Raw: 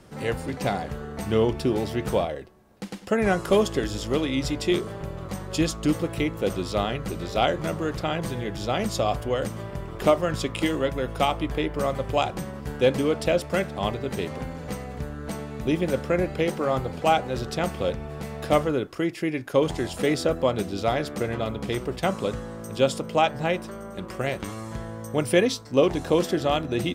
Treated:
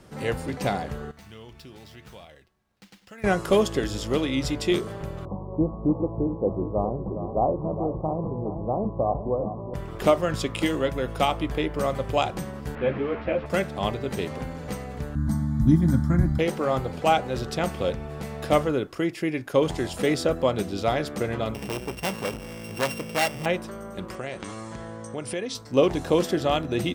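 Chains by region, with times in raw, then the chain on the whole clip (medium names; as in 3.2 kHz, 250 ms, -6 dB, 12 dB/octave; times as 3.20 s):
1.11–3.24 s: median filter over 5 samples + amplifier tone stack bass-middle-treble 5-5-5 + compression 2:1, threshold -43 dBFS
5.25–9.74 s: steep low-pass 1.1 kHz 96 dB/octave + delay 412 ms -10.5 dB
12.75–13.46 s: one-bit delta coder 64 kbps, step -26 dBFS + low-pass 2.4 kHz 24 dB/octave + three-phase chorus
15.15–16.39 s: resonant low shelf 360 Hz +12.5 dB, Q 1.5 + static phaser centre 1.1 kHz, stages 4 + comb of notches 190 Hz
21.54–23.46 s: sorted samples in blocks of 16 samples + transformer saturation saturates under 2 kHz
24.15–25.55 s: steep low-pass 10 kHz 48 dB/octave + compression 3:1, threshold -29 dBFS + bass shelf 110 Hz -9 dB
whole clip: none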